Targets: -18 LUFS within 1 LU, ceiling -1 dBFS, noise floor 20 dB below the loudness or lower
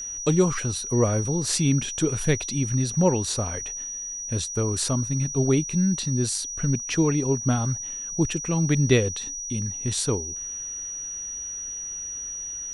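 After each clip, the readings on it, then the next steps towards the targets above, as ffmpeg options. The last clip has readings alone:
steady tone 5800 Hz; tone level -31 dBFS; loudness -25.0 LUFS; peak -6.5 dBFS; loudness target -18.0 LUFS
-> -af "bandreject=f=5.8k:w=30"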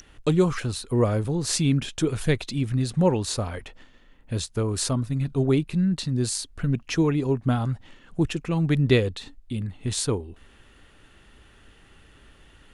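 steady tone none; loudness -25.0 LUFS; peak -7.0 dBFS; loudness target -18.0 LUFS
-> -af "volume=7dB,alimiter=limit=-1dB:level=0:latency=1"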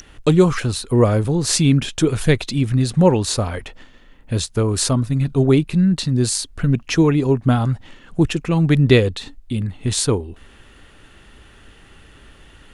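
loudness -18.0 LUFS; peak -1.0 dBFS; noise floor -47 dBFS

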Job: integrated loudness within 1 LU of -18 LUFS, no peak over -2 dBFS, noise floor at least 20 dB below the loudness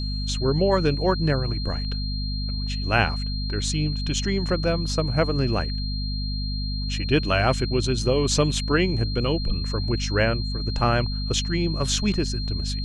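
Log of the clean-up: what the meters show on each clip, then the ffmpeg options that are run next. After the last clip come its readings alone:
hum 50 Hz; harmonics up to 250 Hz; hum level -25 dBFS; steady tone 4200 Hz; tone level -33 dBFS; loudness -24.0 LUFS; peak -6.0 dBFS; loudness target -18.0 LUFS
-> -af "bandreject=f=50:t=h:w=4,bandreject=f=100:t=h:w=4,bandreject=f=150:t=h:w=4,bandreject=f=200:t=h:w=4,bandreject=f=250:t=h:w=4"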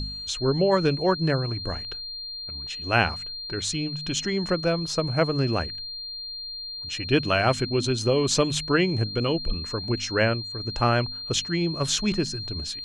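hum none; steady tone 4200 Hz; tone level -33 dBFS
-> -af "bandreject=f=4.2k:w=30"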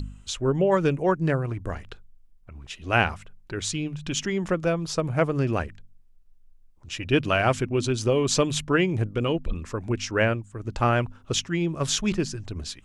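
steady tone none; loudness -25.5 LUFS; peak -5.5 dBFS; loudness target -18.0 LUFS
-> -af "volume=7.5dB,alimiter=limit=-2dB:level=0:latency=1"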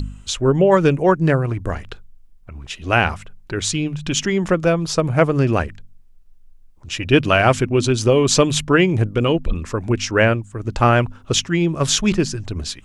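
loudness -18.0 LUFS; peak -2.0 dBFS; noise floor -46 dBFS

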